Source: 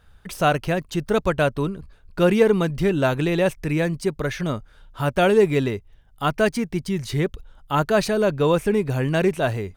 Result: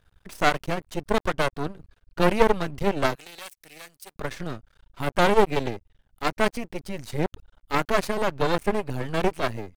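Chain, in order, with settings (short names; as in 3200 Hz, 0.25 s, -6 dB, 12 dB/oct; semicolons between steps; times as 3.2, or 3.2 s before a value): added harmonics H 2 -8 dB, 4 -32 dB, 6 -25 dB, 7 -25 dB, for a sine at -4.5 dBFS; half-wave rectifier; 3.15–4.16 pre-emphasis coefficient 0.97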